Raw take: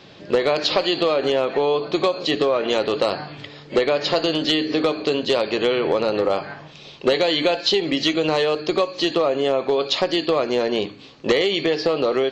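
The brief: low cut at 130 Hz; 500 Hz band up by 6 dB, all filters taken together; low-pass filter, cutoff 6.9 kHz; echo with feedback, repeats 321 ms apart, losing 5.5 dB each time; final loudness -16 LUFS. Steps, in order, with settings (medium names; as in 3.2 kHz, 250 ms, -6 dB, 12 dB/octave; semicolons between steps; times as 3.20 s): high-pass 130 Hz; low-pass 6.9 kHz; peaking EQ 500 Hz +7 dB; feedback delay 321 ms, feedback 53%, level -5.5 dB; trim -1 dB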